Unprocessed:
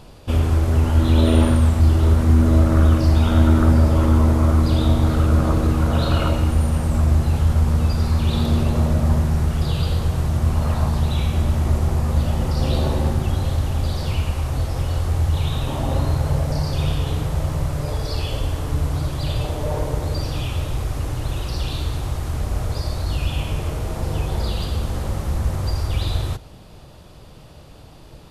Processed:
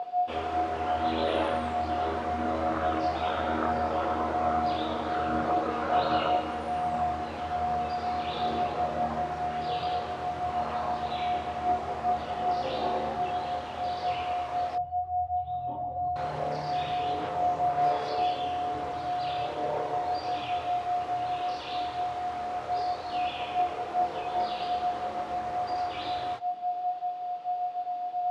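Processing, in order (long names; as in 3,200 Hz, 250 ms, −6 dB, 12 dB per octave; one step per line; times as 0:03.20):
0:14.75–0:16.16: expanding power law on the bin magnitudes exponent 2
steady tone 720 Hz −23 dBFS
multi-voice chorus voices 4, 0.63 Hz, delay 25 ms, depth 2.1 ms
background noise brown −56 dBFS
band-pass filter 440–3,200 Hz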